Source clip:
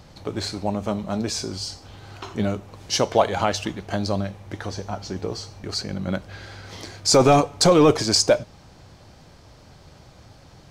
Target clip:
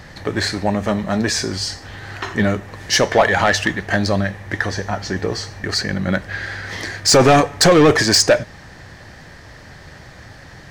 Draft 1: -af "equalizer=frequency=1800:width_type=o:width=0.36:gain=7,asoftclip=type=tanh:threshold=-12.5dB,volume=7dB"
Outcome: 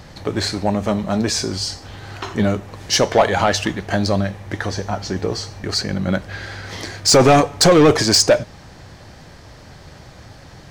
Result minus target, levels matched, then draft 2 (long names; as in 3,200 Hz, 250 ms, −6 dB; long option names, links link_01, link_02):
2,000 Hz band −5.5 dB
-af "equalizer=frequency=1800:width_type=o:width=0.36:gain=17.5,asoftclip=type=tanh:threshold=-12.5dB,volume=7dB"